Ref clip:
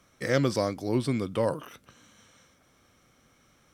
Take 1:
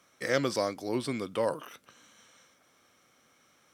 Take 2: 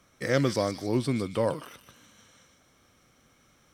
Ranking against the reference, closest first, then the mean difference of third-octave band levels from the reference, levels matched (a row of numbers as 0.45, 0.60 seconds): 2, 1; 1.5, 3.0 decibels